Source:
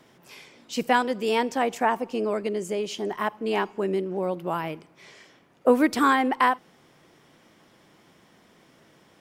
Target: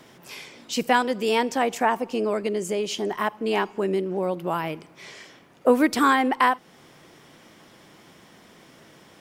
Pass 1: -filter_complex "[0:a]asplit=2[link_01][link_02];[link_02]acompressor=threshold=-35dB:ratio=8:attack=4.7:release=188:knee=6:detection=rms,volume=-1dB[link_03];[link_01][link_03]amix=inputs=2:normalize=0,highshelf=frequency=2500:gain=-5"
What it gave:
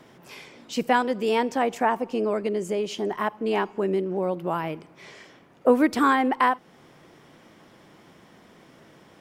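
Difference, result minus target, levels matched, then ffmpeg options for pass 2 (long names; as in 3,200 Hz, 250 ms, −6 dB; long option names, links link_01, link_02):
4,000 Hz band −4.0 dB
-filter_complex "[0:a]asplit=2[link_01][link_02];[link_02]acompressor=threshold=-35dB:ratio=8:attack=4.7:release=188:knee=6:detection=rms,volume=-1dB[link_03];[link_01][link_03]amix=inputs=2:normalize=0,highshelf=frequency=2500:gain=2.5"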